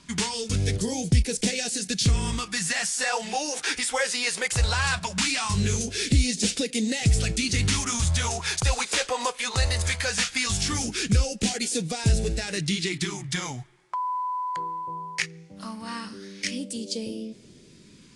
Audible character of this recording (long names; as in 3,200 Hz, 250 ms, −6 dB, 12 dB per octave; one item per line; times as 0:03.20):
phaser sweep stages 2, 0.19 Hz, lowest notch 200–1,100 Hz
a quantiser's noise floor 12 bits, dither none
AAC